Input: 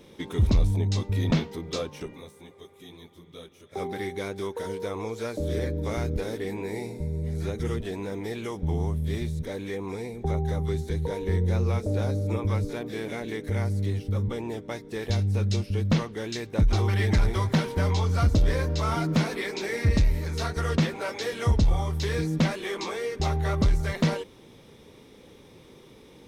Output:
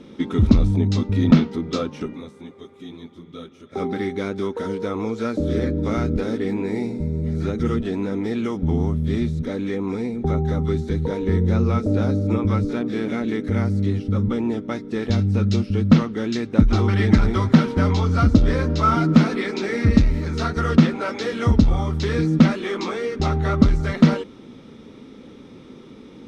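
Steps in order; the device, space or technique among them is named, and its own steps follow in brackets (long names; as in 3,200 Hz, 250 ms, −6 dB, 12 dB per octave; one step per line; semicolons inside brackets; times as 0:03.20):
inside a cardboard box (low-pass filter 5,900 Hz 12 dB per octave; hollow resonant body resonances 240/1,300 Hz, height 12 dB, ringing for 30 ms)
level +3 dB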